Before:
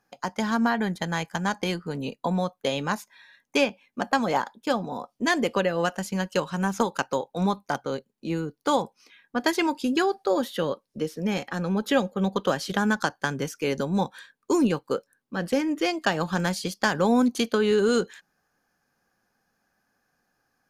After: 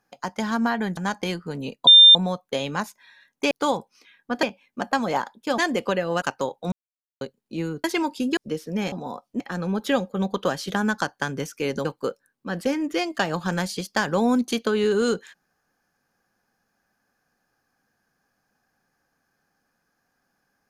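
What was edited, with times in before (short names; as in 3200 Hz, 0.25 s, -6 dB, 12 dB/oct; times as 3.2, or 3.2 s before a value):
0.97–1.37 cut
2.27 add tone 3600 Hz -6.5 dBFS 0.28 s
4.78–5.26 move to 11.42
5.9–6.94 cut
7.44–7.93 mute
8.56–9.48 move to 3.63
10.01–10.87 cut
13.87–14.72 cut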